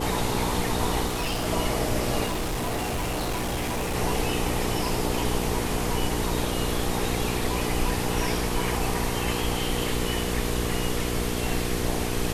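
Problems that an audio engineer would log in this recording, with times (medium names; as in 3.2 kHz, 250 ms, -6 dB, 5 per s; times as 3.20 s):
hum 60 Hz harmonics 8 -30 dBFS
1.06–1.48 s: clipped -23.5 dBFS
2.25–3.95 s: clipped -24.5 dBFS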